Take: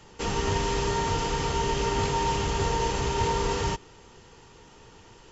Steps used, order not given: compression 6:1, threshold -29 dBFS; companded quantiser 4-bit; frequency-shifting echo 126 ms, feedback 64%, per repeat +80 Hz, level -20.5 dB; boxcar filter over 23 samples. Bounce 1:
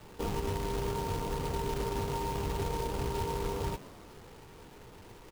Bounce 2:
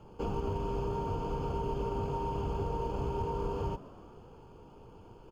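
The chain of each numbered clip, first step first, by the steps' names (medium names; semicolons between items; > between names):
compression > boxcar filter > frequency-shifting echo > companded quantiser; compression > companded quantiser > boxcar filter > frequency-shifting echo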